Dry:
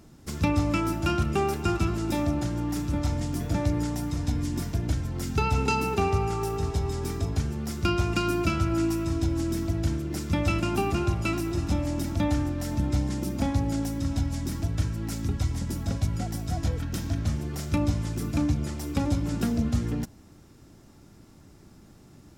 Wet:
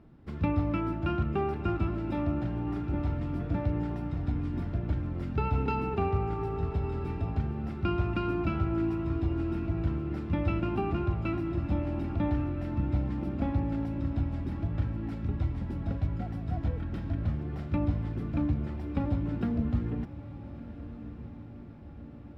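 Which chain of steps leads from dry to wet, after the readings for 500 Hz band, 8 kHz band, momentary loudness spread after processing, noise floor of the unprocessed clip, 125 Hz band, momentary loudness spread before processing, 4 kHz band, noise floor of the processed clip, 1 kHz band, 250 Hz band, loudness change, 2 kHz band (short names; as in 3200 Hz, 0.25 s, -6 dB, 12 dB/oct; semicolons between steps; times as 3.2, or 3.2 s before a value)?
-4.0 dB, under -30 dB, 6 LU, -52 dBFS, -3.0 dB, 5 LU, under -10 dB, -44 dBFS, -5.0 dB, -3.5 dB, -3.5 dB, -8.0 dB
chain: air absorption 460 m; on a send: diffused feedback echo 1.311 s, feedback 61%, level -13.5 dB; on the sum: gain -3 dB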